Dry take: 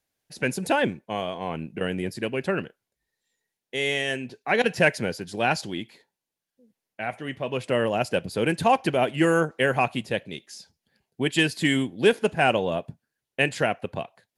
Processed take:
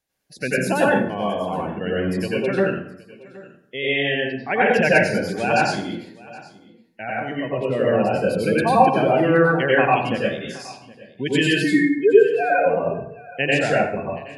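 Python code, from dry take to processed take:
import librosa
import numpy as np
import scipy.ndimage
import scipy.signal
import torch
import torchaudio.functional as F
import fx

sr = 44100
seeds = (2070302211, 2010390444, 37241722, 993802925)

y = fx.sine_speech(x, sr, at=(11.64, 12.66))
y = fx.spec_gate(y, sr, threshold_db=-20, keep='strong')
y = fx.high_shelf(y, sr, hz=3000.0, db=-10.5, at=(7.37, 8.27))
y = y + 10.0 ** (-21.0 / 20.0) * np.pad(y, (int(770 * sr / 1000.0), 0))[:len(y)]
y = fx.rev_plate(y, sr, seeds[0], rt60_s=0.67, hf_ratio=0.65, predelay_ms=80, drr_db=-6.0)
y = y * librosa.db_to_amplitude(-1.0)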